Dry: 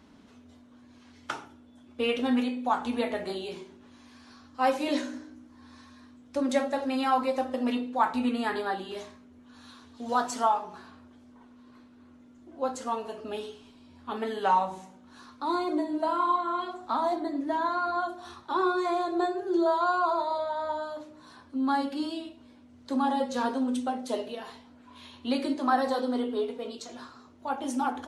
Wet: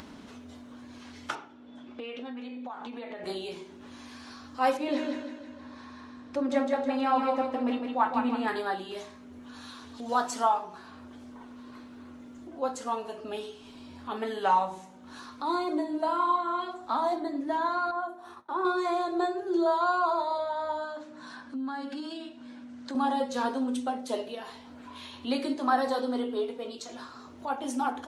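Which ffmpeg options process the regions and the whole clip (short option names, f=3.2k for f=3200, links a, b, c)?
-filter_complex "[0:a]asettb=1/sr,asplit=3[a][b][c];[a]atrim=end=1.354[d];[b]atrim=start=1.35:end=3.24,asetpts=PTS-STARTPTS,afade=t=in:d=0.004:c=qsin,afade=t=out:st=1.886:d=0.004:c=qsin,acompressor=threshold=-35dB:ratio=10:attack=3.2:release=140:knee=1:detection=peak,highpass=150,lowpass=4.2k[e];[c]atrim=start=3.236[f];[d][e]acrossfade=d=0.004:c1=hsin:c2=qsin[g];[g][f]acrossfade=d=0.004:c1=qsin:c2=hsin,asettb=1/sr,asplit=3[h][i][j];[h]atrim=end=4.774[k];[i]atrim=start=4.77:end=8.48,asetpts=PTS-STARTPTS,afade=t=in:d=0.004:c=qsin,afade=t=out:st=3.706:d=0.004:c=qsin,highpass=56,aemphasis=mode=reproduction:type=75kf,aecho=1:1:160|320|480|640|800:0.562|0.242|0.104|0.0447|0.0192,atrim=end_sample=163611[l];[j]atrim=start=8.476[m];[k][l]acrossfade=d=0.004:c1=hsin:c2=qsin[n];[n][m]acrossfade=d=0.004:c1=qsin:c2=hsin,asettb=1/sr,asplit=3[o][p][q];[o]atrim=end=17.914[r];[p]atrim=start=17.91:end=18.65,asetpts=PTS-STARTPTS,afade=t=in:d=0.004:c=qsin,afade=t=out:st=0.736:d=0.004:c=qsin,highpass=f=340:p=1,agate=range=-33dB:threshold=-46dB:ratio=3:release=100:detection=peak,equalizer=f=4.7k:t=o:w=2.2:g=-14[s];[q]atrim=start=18.646[t];[r][s]acrossfade=d=0.004:c1=hsin:c2=qsin[u];[u][t]acrossfade=d=0.004:c1=qsin:c2=hsin,asettb=1/sr,asplit=3[v][w][x];[v]atrim=end=20.844[y];[w]atrim=start=20.84:end=22.95,asetpts=PTS-STARTPTS,afade=t=in:d=0.004:c=qsin,afade=t=out:st=2.106:d=0.004:c=qsin,acompressor=threshold=-33dB:ratio=5:attack=3.2:release=140:knee=1:detection=peak,highpass=140,equalizer=f=240:t=q:w=4:g=6,equalizer=f=410:t=q:w=4:g=-7,equalizer=f=1.6k:t=q:w=4:g=7,lowpass=f=9k:w=0.5412,lowpass=f=9k:w=1.3066[z];[x]atrim=start=22.946[aa];[y][z]acrossfade=d=0.004:c1=hsin:c2=qsin[ab];[ab][aa]acrossfade=d=0.004:c1=qsin:c2=hsin,lowshelf=f=240:g=-3.5,acompressor=mode=upward:threshold=-37dB:ratio=2.5"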